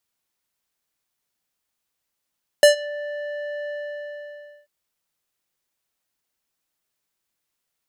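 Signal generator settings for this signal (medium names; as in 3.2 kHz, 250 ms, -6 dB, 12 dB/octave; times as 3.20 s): synth note square D5 12 dB/octave, low-pass 1.7 kHz, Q 1.3, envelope 3 oct, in 0.26 s, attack 1.6 ms, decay 0.12 s, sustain -22 dB, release 0.98 s, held 1.06 s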